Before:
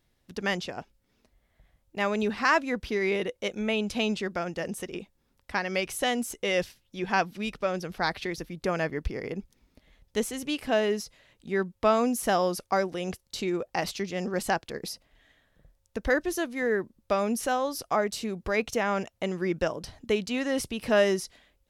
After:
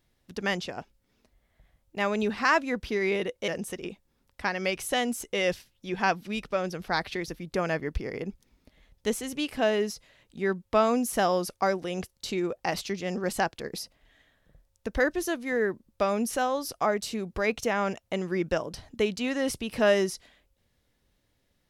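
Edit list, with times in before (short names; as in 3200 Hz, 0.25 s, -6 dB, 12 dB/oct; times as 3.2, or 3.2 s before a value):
3.48–4.58 cut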